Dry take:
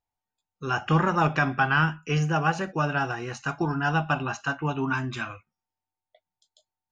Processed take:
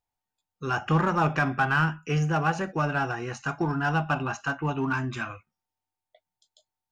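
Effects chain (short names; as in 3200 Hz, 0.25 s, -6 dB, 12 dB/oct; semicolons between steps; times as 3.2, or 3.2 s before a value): dynamic EQ 3900 Hz, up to -5 dB, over -47 dBFS, Q 1.3; in parallel at -7.5 dB: hard clip -25.5 dBFS, distortion -7 dB; on the sum: gain -2.5 dB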